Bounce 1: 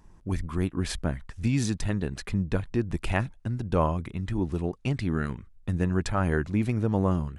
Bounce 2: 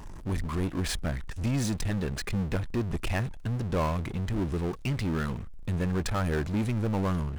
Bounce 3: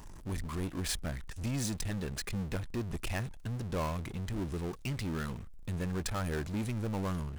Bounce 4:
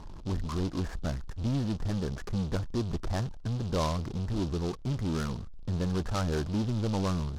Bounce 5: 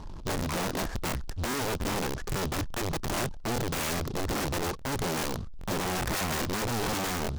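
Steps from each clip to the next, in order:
power-law waveshaper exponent 0.5; trim -8.5 dB
treble shelf 4.4 kHz +8 dB; trim -6.5 dB
inverse Chebyshev low-pass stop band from 3 kHz, stop band 40 dB; delay time shaken by noise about 3.8 kHz, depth 0.061 ms; trim +5 dB
integer overflow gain 29.5 dB; crackling interface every 0.41 s, samples 1024, repeat, from 0.67 s; trim +3 dB

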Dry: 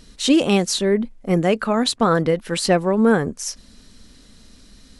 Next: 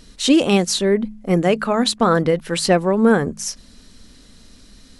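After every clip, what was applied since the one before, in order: de-hum 53.25 Hz, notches 4; trim +1.5 dB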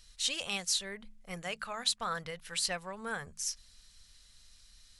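amplifier tone stack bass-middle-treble 10-0-10; trim -8 dB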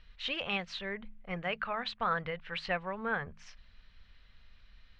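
low-pass 2.8 kHz 24 dB/octave; trim +4.5 dB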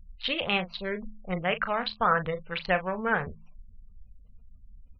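local Wiener filter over 25 samples; doubling 38 ms -10.5 dB; spectral gate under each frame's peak -30 dB strong; trim +8 dB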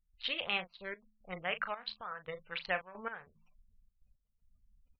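bass shelf 490 Hz -12 dB; trance gate ".xxxx.x." 112 bpm -12 dB; trim -5.5 dB

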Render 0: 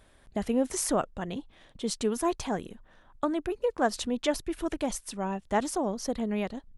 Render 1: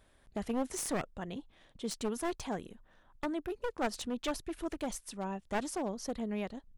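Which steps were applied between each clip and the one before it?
one-sided wavefolder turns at -26.5 dBFS; trim -6 dB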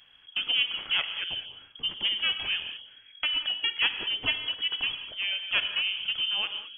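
frequency inversion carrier 3.3 kHz; gated-style reverb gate 240 ms flat, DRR 7.5 dB; trim +6.5 dB

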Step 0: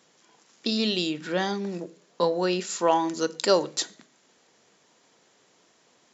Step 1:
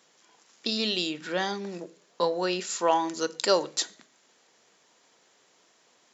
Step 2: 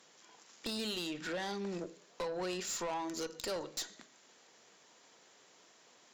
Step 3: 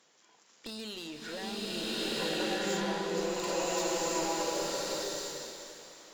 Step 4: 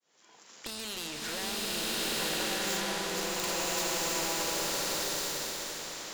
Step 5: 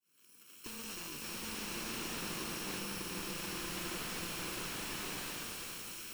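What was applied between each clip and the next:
bass shelf 320 Hz -8.5 dB
compression 3:1, threshold -33 dBFS, peak gain reduction 12 dB; valve stage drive 34 dB, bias 0.3; trim +1 dB
hum notches 60/120/180 Hz; swelling reverb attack 1410 ms, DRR -10.5 dB; trim -3.5 dB
fade-in on the opening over 1.32 s; spectrum-flattening compressor 2:1
bit-reversed sample order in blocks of 64 samples; slew-rate limiter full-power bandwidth 81 Hz; trim -3 dB

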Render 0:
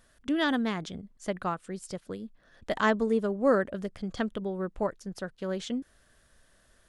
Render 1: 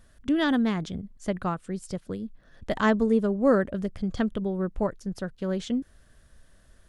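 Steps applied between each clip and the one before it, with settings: bass shelf 240 Hz +10.5 dB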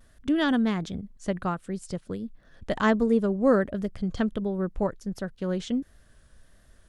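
vibrato 1.4 Hz 48 cents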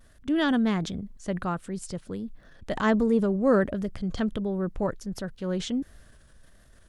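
transient shaper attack -3 dB, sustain +5 dB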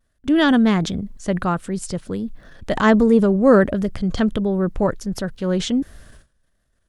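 gate with hold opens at -44 dBFS; trim +8.5 dB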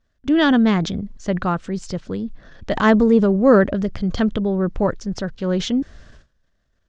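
steep low-pass 6.7 kHz 36 dB/octave

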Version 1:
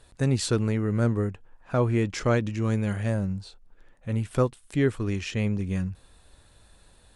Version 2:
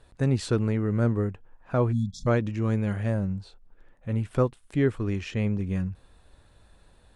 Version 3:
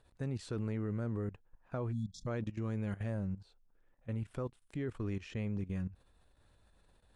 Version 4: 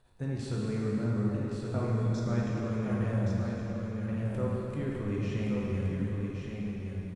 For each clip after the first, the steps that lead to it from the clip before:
spectral selection erased 1.92–2.27 s, 250–3300 Hz; treble shelf 3.6 kHz -10 dB
level held to a coarse grid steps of 15 dB; trim -6 dB
delay 1121 ms -5.5 dB; plate-style reverb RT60 3.8 s, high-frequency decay 0.75×, DRR -5 dB

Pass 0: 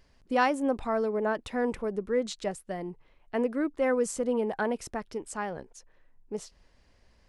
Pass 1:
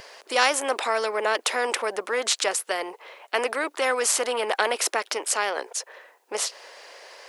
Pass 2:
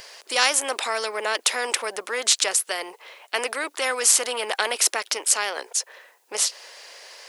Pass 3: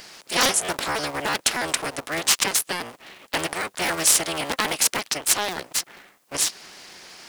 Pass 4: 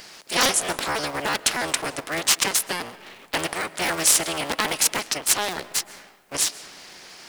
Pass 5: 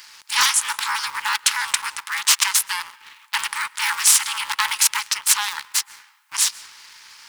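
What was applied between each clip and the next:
steep high-pass 440 Hz 36 dB/octave; spectrum-flattening compressor 2:1; trim +6 dB
treble shelf 2.3 kHz +11 dB; trim -4 dB
cycle switcher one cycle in 3, inverted
reverberation RT60 1.8 s, pre-delay 95 ms, DRR 17 dB
brick-wall FIR high-pass 820 Hz; waveshaping leveller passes 1

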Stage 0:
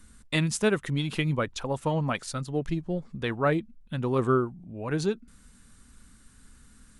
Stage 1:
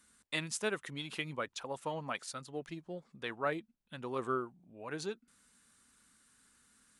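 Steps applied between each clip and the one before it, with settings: high-pass 590 Hz 6 dB/octave; trim -6.5 dB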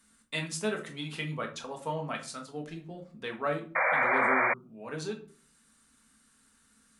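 simulated room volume 300 m³, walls furnished, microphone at 1.6 m; painted sound noise, 3.75–4.54 s, 470–2400 Hz -26 dBFS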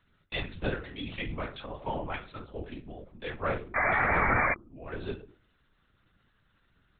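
LPC vocoder at 8 kHz whisper

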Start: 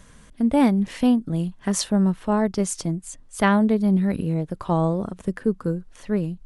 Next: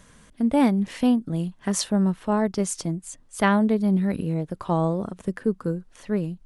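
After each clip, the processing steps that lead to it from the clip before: bass shelf 78 Hz -6.5 dB; trim -1 dB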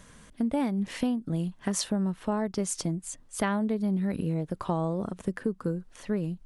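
compression 5:1, threshold -25 dBFS, peak gain reduction 10.5 dB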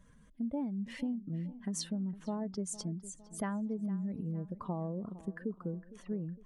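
spectral contrast enhancement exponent 1.6; filtered feedback delay 458 ms, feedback 51%, low-pass 2.8 kHz, level -16.5 dB; trim -8 dB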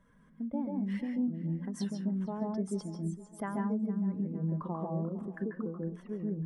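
reverberation RT60 0.15 s, pre-delay 137 ms, DRR 2.5 dB; trim -9 dB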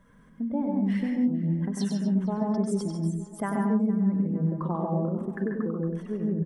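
delay 96 ms -5.5 dB; trim +6.5 dB

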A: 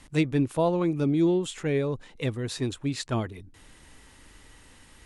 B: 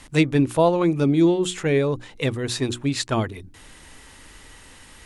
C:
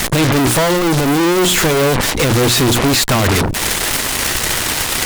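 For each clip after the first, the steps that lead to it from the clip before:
bass shelf 470 Hz -3 dB; hum notches 60/120/180/240/300/360 Hz; trim +8 dB
fuzz box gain 40 dB, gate -48 dBFS; Chebyshev shaper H 3 -9 dB, 7 -13 dB, 8 -7 dB, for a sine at -10 dBFS; trim +2.5 dB

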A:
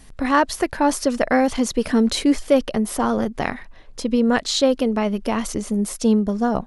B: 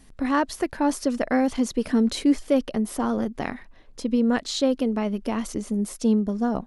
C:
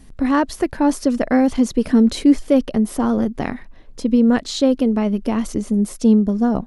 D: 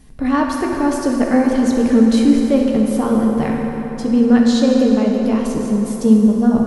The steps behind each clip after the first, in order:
peaking EQ 270 Hz +5 dB 1.1 oct; trim -7 dB
bass shelf 400 Hz +6.5 dB; trim +2.5 dB
reverberation RT60 4.2 s, pre-delay 3 ms, DRR -1.5 dB; trim -1.5 dB

